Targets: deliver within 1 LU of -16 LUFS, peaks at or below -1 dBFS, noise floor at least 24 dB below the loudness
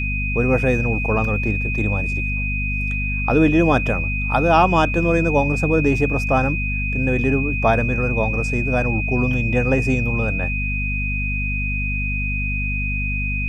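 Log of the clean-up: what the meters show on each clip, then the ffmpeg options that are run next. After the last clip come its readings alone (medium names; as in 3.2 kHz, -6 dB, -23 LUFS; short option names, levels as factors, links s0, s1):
hum 50 Hz; highest harmonic 250 Hz; hum level -22 dBFS; steady tone 2.5 kHz; tone level -24 dBFS; loudness -19.5 LUFS; peak level -3.0 dBFS; loudness target -16.0 LUFS
-> -af "bandreject=f=50:t=h:w=6,bandreject=f=100:t=h:w=6,bandreject=f=150:t=h:w=6,bandreject=f=200:t=h:w=6,bandreject=f=250:t=h:w=6"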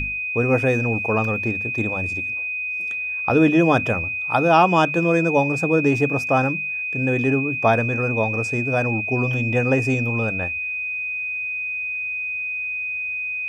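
hum not found; steady tone 2.5 kHz; tone level -24 dBFS
-> -af "bandreject=f=2500:w=30"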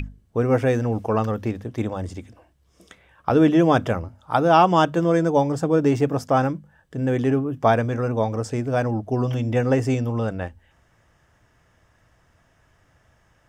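steady tone not found; loudness -21.5 LUFS; peak level -5.0 dBFS; loudness target -16.0 LUFS
-> -af "volume=1.88,alimiter=limit=0.891:level=0:latency=1"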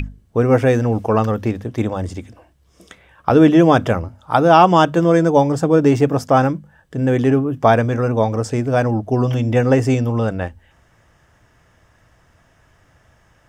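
loudness -16.0 LUFS; peak level -1.0 dBFS; noise floor -56 dBFS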